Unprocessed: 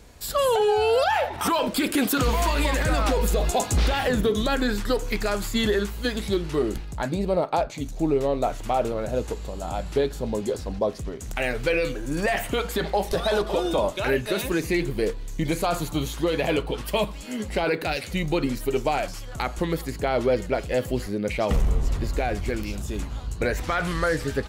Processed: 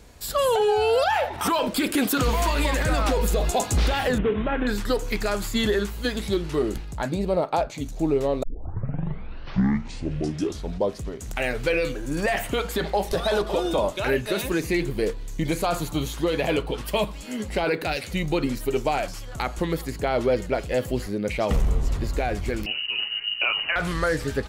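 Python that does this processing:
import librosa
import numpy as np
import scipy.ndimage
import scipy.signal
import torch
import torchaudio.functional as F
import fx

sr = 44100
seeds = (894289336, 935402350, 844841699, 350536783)

y = fx.cvsd(x, sr, bps=16000, at=(4.18, 4.67))
y = fx.freq_invert(y, sr, carrier_hz=2900, at=(22.66, 23.76))
y = fx.edit(y, sr, fx.tape_start(start_s=8.43, length_s=2.56), tone=tone)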